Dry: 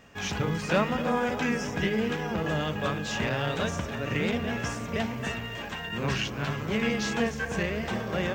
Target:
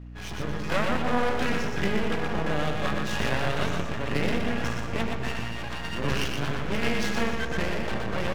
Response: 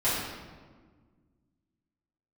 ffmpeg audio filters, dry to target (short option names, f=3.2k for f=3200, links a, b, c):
-filter_complex "[0:a]adynamicsmooth=sensitivity=7:basefreq=3.3k,aeval=exprs='max(val(0),0)':c=same,asplit=2[a][b];[b]aecho=0:1:121|242|363|484:0.596|0.179|0.0536|0.0161[c];[a][c]amix=inputs=2:normalize=0,dynaudnorm=f=190:g=7:m=6dB,aeval=exprs='val(0)+0.0126*(sin(2*PI*60*n/s)+sin(2*PI*2*60*n/s)/2+sin(2*PI*3*60*n/s)/3+sin(2*PI*4*60*n/s)/4+sin(2*PI*5*60*n/s)/5)':c=same,volume=-2dB"